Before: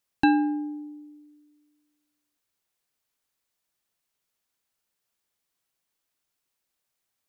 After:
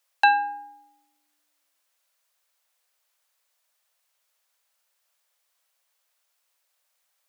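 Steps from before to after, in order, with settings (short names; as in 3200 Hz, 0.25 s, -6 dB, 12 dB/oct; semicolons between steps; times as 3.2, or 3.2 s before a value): elliptic high-pass 520 Hz, stop band 50 dB; gain +8 dB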